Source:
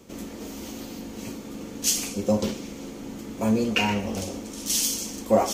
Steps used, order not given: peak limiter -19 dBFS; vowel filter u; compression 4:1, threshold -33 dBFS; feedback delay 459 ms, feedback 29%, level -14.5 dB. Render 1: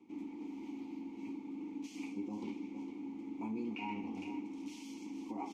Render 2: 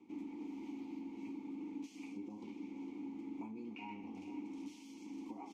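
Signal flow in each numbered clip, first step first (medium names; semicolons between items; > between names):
feedback delay > peak limiter > vowel filter > compression; peak limiter > feedback delay > compression > vowel filter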